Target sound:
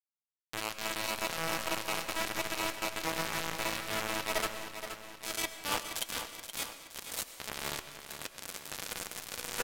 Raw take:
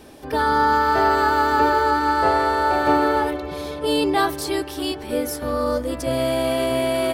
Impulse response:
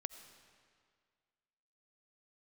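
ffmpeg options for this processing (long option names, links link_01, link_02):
-filter_complex "[0:a]highpass=frequency=690:width=0.5412,highpass=frequency=690:width=1.3066,aecho=1:1:4.5:0.67,areverse,acompressor=threshold=-26dB:ratio=16,areverse,acrusher=bits=3:mix=0:aa=0.000001,flanger=delay=2.6:depth=2.6:regen=-73:speed=1.3:shape=triangular,asetrate=32667,aresample=44100,aecho=1:1:473|946|1419|1892|2365|2838:0.335|0.171|0.0871|0.0444|0.0227|0.0116[link_01];[1:a]atrim=start_sample=2205,afade=type=out:start_time=0.29:duration=0.01,atrim=end_sample=13230,asetrate=38367,aresample=44100[link_02];[link_01][link_02]afir=irnorm=-1:irlink=0,volume=2.5dB"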